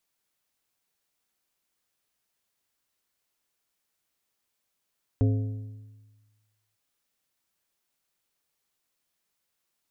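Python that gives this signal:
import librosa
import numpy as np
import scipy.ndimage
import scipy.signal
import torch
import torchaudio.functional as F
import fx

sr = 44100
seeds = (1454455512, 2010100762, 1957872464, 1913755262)

y = fx.strike_metal(sr, length_s=1.55, level_db=-18, body='plate', hz=106.0, decay_s=1.42, tilt_db=6.5, modes=5)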